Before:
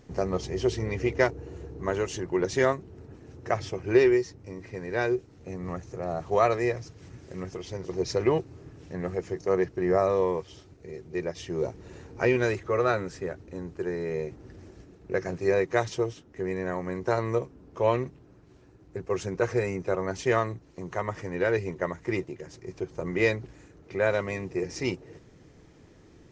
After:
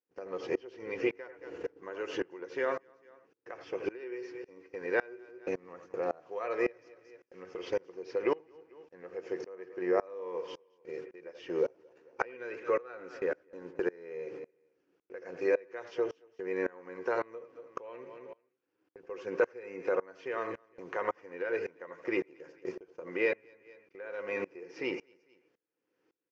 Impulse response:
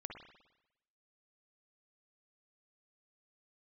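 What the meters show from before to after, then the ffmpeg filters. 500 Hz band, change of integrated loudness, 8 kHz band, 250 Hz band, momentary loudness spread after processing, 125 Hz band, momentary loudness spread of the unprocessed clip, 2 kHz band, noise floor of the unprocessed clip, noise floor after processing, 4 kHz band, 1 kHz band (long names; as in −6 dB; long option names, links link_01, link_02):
−7.0 dB, −7.5 dB, can't be measured, −9.5 dB, 16 LU, −24.0 dB, 17 LU, −6.0 dB, −55 dBFS, −80 dBFS, −10.0 dB, −9.0 dB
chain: -filter_complex "[0:a]highshelf=frequency=2400:gain=7.5,acrusher=bits=9:mix=0:aa=0.000001,highpass=290,equalizer=frequency=310:width_type=q:width=4:gain=6,equalizer=frequency=500:width_type=q:width=4:gain=10,equalizer=frequency=1000:width_type=q:width=4:gain=4,equalizer=frequency=1500:width_type=q:width=4:gain=7,equalizer=frequency=2600:width_type=q:width=4:gain=5,equalizer=frequency=3900:width_type=q:width=4:gain=-9,lowpass=frequency=5100:width=0.5412,lowpass=frequency=5100:width=1.3066,agate=range=-26dB:threshold=-39dB:ratio=16:detection=peak,aecho=1:1:222|444:0.0794|0.0167,acompressor=threshold=-35dB:ratio=2.5,bandreject=frequency=630:width=12,asplit=2[link_01][link_02];[1:a]atrim=start_sample=2205,afade=type=out:start_time=0.14:duration=0.01,atrim=end_sample=6615,asetrate=29547,aresample=44100[link_03];[link_02][link_03]afir=irnorm=-1:irlink=0,volume=-3dB[link_04];[link_01][link_04]amix=inputs=2:normalize=0,acrossover=split=3900[link_05][link_06];[link_06]acompressor=threshold=-57dB:ratio=4:attack=1:release=60[link_07];[link_05][link_07]amix=inputs=2:normalize=0,aeval=exprs='val(0)*pow(10,-26*if(lt(mod(-1.8*n/s,1),2*abs(-1.8)/1000),1-mod(-1.8*n/s,1)/(2*abs(-1.8)/1000),(mod(-1.8*n/s,1)-2*abs(-1.8)/1000)/(1-2*abs(-1.8)/1000))/20)':channel_layout=same,volume=3dB"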